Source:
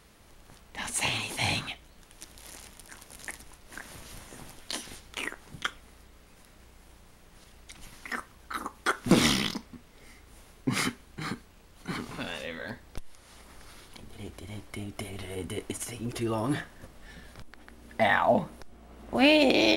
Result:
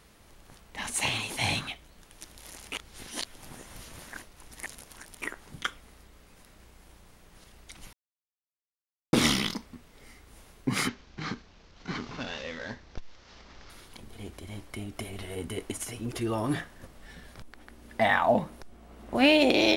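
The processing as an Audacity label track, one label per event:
2.720000	5.220000	reverse
7.930000	9.130000	mute
10.880000	13.700000	CVSD 32 kbps

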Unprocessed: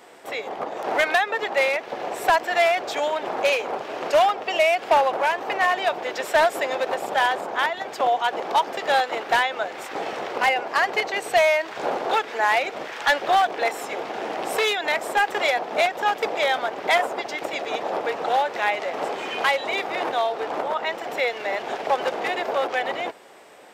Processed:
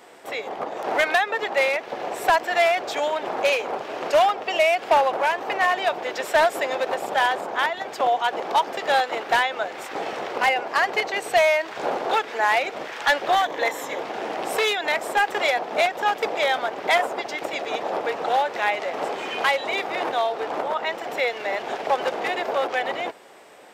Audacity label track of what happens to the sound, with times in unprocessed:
13.340000	13.990000	ripple EQ crests per octave 1.1, crest to trough 7 dB

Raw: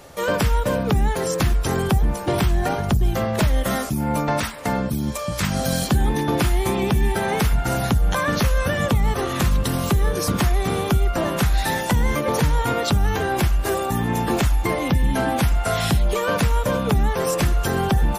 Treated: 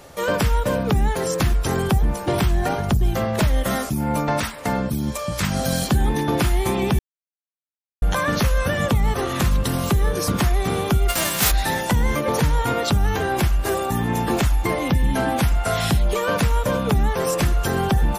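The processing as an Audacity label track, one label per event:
6.990000	8.020000	mute
11.080000	11.500000	spectral whitening exponent 0.3

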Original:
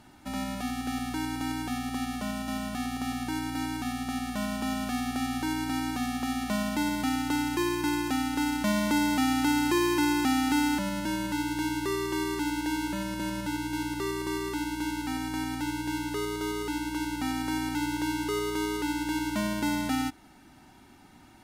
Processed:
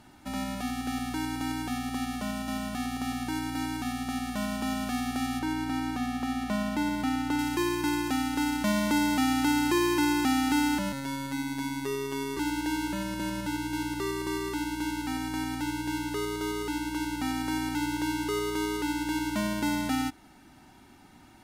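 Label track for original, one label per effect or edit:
5.390000	7.390000	high shelf 3800 Hz -7.5 dB
10.920000	12.370000	robotiser 137 Hz

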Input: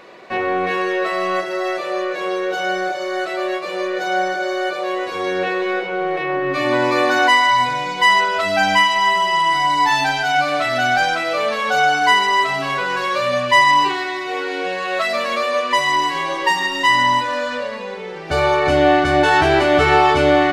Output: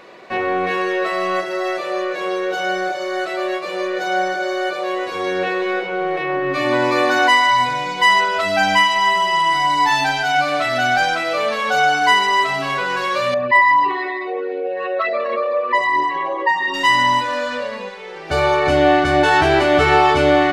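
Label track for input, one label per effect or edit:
13.340000	16.740000	formant sharpening exponent 2
17.880000	18.300000	bell 360 Hz -> 67 Hz -12 dB 2.2 oct

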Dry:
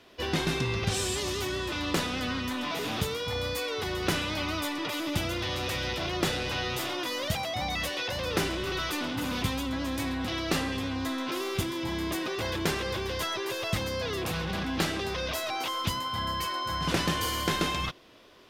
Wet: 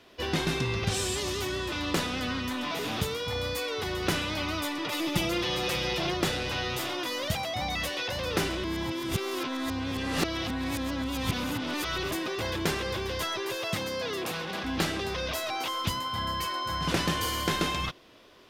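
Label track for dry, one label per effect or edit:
4.910000	6.140000	comb 5.7 ms, depth 82%
8.640000	12.110000	reverse
13.560000	14.630000	HPF 120 Hz -> 280 Hz

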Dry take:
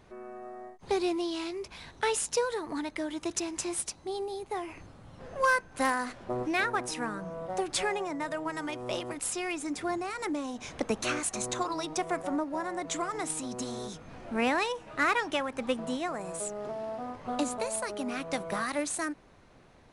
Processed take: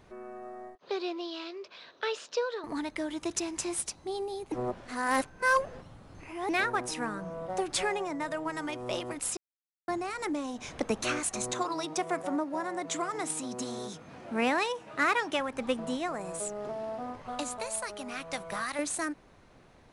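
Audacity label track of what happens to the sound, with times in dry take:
0.750000	2.640000	speaker cabinet 460–4700 Hz, peaks and dips at 570 Hz +4 dB, 840 Hz -10 dB, 2100 Hz -7 dB
4.520000	6.490000	reverse
9.370000	9.880000	mute
11.520000	15.390000	HPF 120 Hz
17.220000	18.790000	bell 300 Hz -8.5 dB 2.1 oct

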